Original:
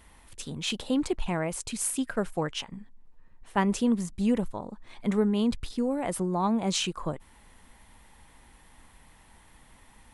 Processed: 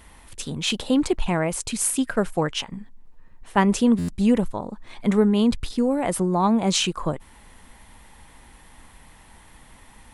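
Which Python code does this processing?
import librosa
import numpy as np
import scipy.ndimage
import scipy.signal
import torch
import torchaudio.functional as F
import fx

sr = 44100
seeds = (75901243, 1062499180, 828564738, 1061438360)

y = fx.buffer_glitch(x, sr, at_s=(3.98,), block=512, repeats=8)
y = F.gain(torch.from_numpy(y), 6.5).numpy()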